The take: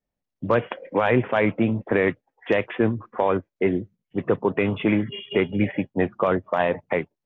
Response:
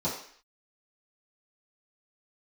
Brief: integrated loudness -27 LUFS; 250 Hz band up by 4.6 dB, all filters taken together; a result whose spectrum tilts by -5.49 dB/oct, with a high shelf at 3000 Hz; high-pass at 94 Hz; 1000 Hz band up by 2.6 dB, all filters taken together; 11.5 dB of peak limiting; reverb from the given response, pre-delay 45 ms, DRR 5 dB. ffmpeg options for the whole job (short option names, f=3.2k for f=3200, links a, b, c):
-filter_complex "[0:a]highpass=94,equalizer=f=250:t=o:g=6,equalizer=f=1k:t=o:g=4,highshelf=f=3k:g=-8.5,alimiter=limit=-15.5dB:level=0:latency=1,asplit=2[a][b];[1:a]atrim=start_sample=2205,adelay=45[c];[b][c]afir=irnorm=-1:irlink=0,volume=-13dB[d];[a][d]amix=inputs=2:normalize=0,volume=-2.5dB"